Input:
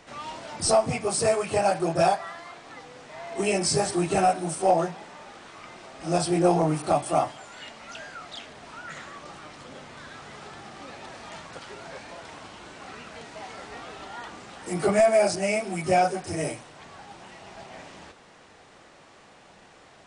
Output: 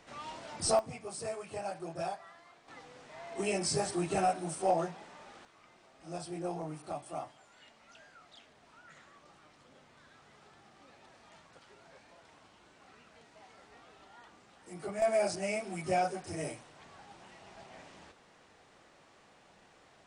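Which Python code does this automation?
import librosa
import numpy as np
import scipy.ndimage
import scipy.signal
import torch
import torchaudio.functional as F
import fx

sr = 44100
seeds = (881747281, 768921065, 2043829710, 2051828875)

y = fx.gain(x, sr, db=fx.steps((0.0, -7.0), (0.79, -16.0), (2.68, -8.0), (5.45, -17.0), (15.02, -9.0)))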